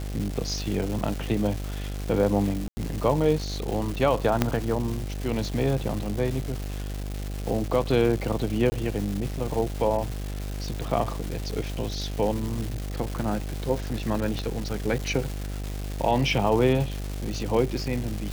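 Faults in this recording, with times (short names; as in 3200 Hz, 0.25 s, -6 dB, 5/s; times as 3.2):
buzz 50 Hz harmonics 16 -32 dBFS
crackle 570/s -30 dBFS
2.68–2.77 gap 90 ms
4.42 pop -6 dBFS
8.7–8.72 gap 20 ms
14.39 pop -17 dBFS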